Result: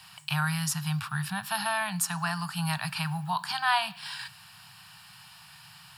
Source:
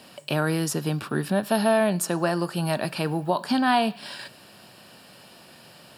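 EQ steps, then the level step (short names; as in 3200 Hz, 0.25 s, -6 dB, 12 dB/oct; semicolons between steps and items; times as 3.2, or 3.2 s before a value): inverse Chebyshev band-stop 240–570 Hz, stop band 40 dB; 0.0 dB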